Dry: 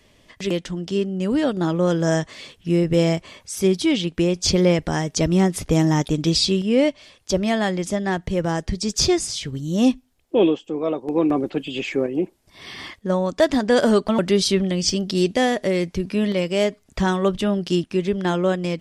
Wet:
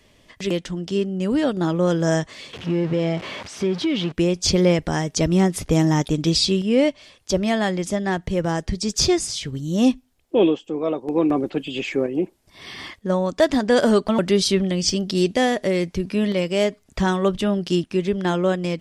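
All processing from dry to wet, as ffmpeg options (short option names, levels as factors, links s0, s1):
-filter_complex "[0:a]asettb=1/sr,asplit=3[s0][s1][s2];[s0]atrim=end=2.534[s3];[s1]atrim=start=2.53:end=4.12,asetpts=PTS-STARTPTS,afade=t=in:d=0.004:c=qsin,afade=t=out:st=1.586:d=0.004:c=qsin,aeval=exprs='val(0)+0.5*0.0447*sgn(val(0))':c=same,acompressor=threshold=0.126:ratio=3:attack=3.2:release=140:knee=1:detection=peak,highpass=120,lowpass=3600[s4];[s2]atrim=start=4.116[s5];[s3][s4]acrossfade=d=0.004:c1=hsin:c2=qsin[s6];[s6][s5]acrossfade=d=0.004:c1=qsin:c2=hsin"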